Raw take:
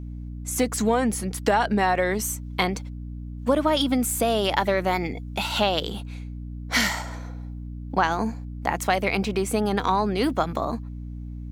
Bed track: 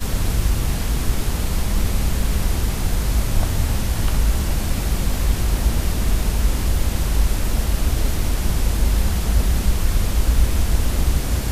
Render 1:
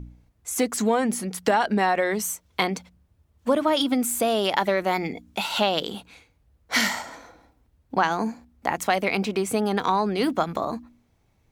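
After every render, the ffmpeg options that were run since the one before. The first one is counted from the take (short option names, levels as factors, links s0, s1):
-af "bandreject=f=60:t=h:w=4,bandreject=f=120:t=h:w=4,bandreject=f=180:t=h:w=4,bandreject=f=240:t=h:w=4,bandreject=f=300:t=h:w=4"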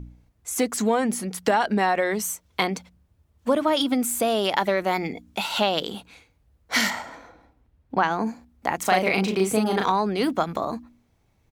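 -filter_complex "[0:a]asettb=1/sr,asplit=3[s0][s1][s2];[s0]atrim=end=6.904[s3];[s1]atrim=start=6.9:end=8.27,asetpts=PTS-STARTPTS,afade=t=in:d=0.004:c=qsin,afade=t=out:st=1.366:d=0.004:c=qsin,bass=f=250:g=1,treble=f=4000:g=-8[s4];[s2]atrim=start=8.266[s5];[s3][s4]acrossfade=d=0.004:c1=hsin:c2=qsin[s6];[s6][s5]acrossfade=d=0.004:c1=qsin:c2=hsin,asplit=3[s7][s8][s9];[s7]afade=t=out:st=8.82:d=0.02[s10];[s8]asplit=2[s11][s12];[s12]adelay=37,volume=0.794[s13];[s11][s13]amix=inputs=2:normalize=0,afade=t=in:st=8.82:d=0.02,afade=t=out:st=9.9:d=0.02[s14];[s9]afade=t=in:st=9.9:d=0.02[s15];[s10][s14][s15]amix=inputs=3:normalize=0"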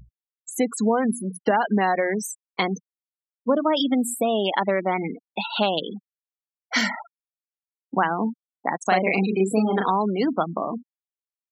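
-af "afftfilt=real='re*gte(hypot(re,im),0.0631)':imag='im*gte(hypot(re,im),0.0631)':win_size=1024:overlap=0.75,lowshelf=f=130:t=q:w=1.5:g=-9"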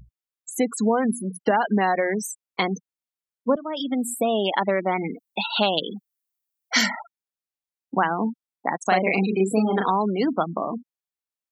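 -filter_complex "[0:a]asettb=1/sr,asplit=3[s0][s1][s2];[s0]atrim=end=5.104[s3];[s1]atrim=start=5.1:end=6.86,asetpts=PTS-STARTPTS,afade=t=in:d=0.004:c=qsin,afade=t=out:st=1.756:d=0.004:c=qsin,aemphasis=mode=production:type=50kf[s4];[s2]atrim=start=6.856[s5];[s3][s4]acrossfade=d=0.004:c1=hsin:c2=qsin[s6];[s6][s5]acrossfade=d=0.004:c1=qsin:c2=hsin,asplit=2[s7][s8];[s7]atrim=end=3.56,asetpts=PTS-STARTPTS,afade=t=out:st=3.556:d=0.004:c=hsin:silence=0.16788[s9];[s8]atrim=start=3.56,asetpts=PTS-STARTPTS,afade=t=in:d=0.65:silence=0.16788[s10];[s9][s10]concat=n=2:v=0:a=1"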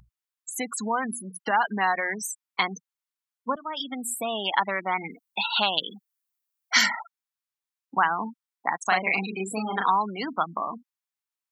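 -af "lowshelf=f=730:t=q:w=1.5:g=-9.5"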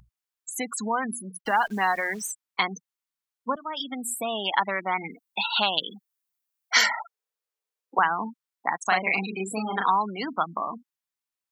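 -filter_complex "[0:a]asettb=1/sr,asplit=3[s0][s1][s2];[s0]atrim=end=1.414[s3];[s1]atrim=start=1.41:end=2.32,asetpts=PTS-STARTPTS,afade=t=in:d=0.004:c=qsin,afade=t=out:st=0.906:d=0.004:c=qsin,acrusher=bits=9:dc=4:mix=0:aa=0.000001[s4];[s2]atrim=start=2.316[s5];[s3][s4]acrossfade=d=0.004:c1=hsin:c2=qsin[s6];[s6][s5]acrossfade=d=0.004:c1=qsin:c2=hsin,asettb=1/sr,asplit=3[s7][s8][s9];[s7]atrim=end=6.754[s10];[s8]atrim=start=6.75:end=7.99,asetpts=PTS-STARTPTS,afade=t=in:d=0.004:c=qsin,afade=t=out:st=1.236:d=0.004:c=qsin,highpass=f=460:t=q:w=4.9[s11];[s9]atrim=start=7.986[s12];[s10][s11]acrossfade=d=0.004:c1=hsin:c2=qsin[s13];[s13][s12]acrossfade=d=0.004:c1=qsin:c2=hsin"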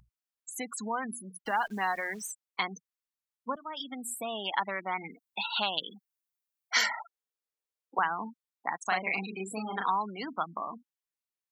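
-af "volume=0.473"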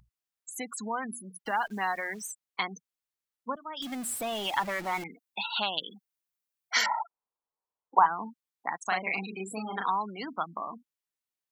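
-filter_complex "[0:a]asettb=1/sr,asplit=3[s0][s1][s2];[s0]atrim=end=3.824[s3];[s1]atrim=start=3.82:end=5.04,asetpts=PTS-STARTPTS,afade=t=in:d=0.004:c=qsin,afade=t=out:st=1.216:d=0.004:c=qsin,aeval=exprs='val(0)+0.5*0.0158*sgn(val(0))':c=same[s4];[s2]atrim=start=5.036[s5];[s3][s4]acrossfade=d=0.004:c1=hsin:c2=qsin[s6];[s6][s5]acrossfade=d=0.004:c1=qsin:c2=hsin,asettb=1/sr,asplit=3[s7][s8][s9];[s7]atrim=end=6.864[s10];[s8]atrim=start=6.86:end=8.06,asetpts=PTS-STARTPTS,afade=t=in:d=0.004:c=qsin,afade=t=out:st=1.196:d=0.004:c=qsin,lowpass=f=970:t=q:w=3.6[s11];[s9]atrim=start=8.056[s12];[s10][s11]acrossfade=d=0.004:c1=hsin:c2=qsin[s13];[s13][s12]acrossfade=d=0.004:c1=qsin:c2=hsin"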